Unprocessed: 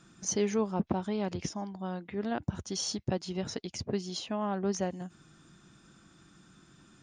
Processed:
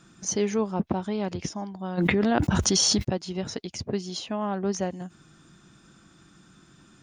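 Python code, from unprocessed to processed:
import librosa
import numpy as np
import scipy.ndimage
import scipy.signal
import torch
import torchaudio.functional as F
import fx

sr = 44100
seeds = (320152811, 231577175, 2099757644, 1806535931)

y = fx.env_flatten(x, sr, amount_pct=100, at=(1.97, 3.03), fade=0.02)
y = y * librosa.db_to_amplitude(3.5)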